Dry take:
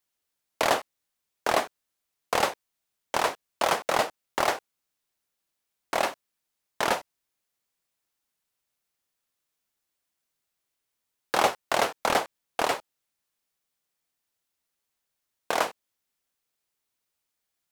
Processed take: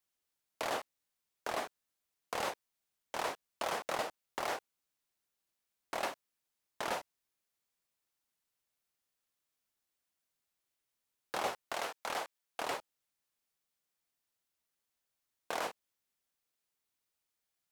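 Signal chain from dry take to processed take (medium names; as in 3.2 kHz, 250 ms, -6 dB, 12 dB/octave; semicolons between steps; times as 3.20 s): peak limiter -20 dBFS, peak gain reduction 11.5 dB; 11.73–12.62 s: bass shelf 400 Hz -8.5 dB; trim -4.5 dB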